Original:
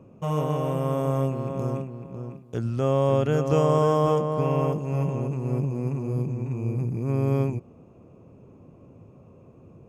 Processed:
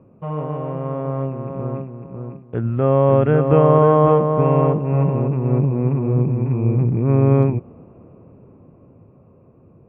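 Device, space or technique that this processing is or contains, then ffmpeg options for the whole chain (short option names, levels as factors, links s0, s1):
action camera in a waterproof case: -af "lowpass=f=2200:w=0.5412,lowpass=f=2200:w=1.3066,dynaudnorm=f=220:g=21:m=5.01" -ar 32000 -c:a aac -b:a 64k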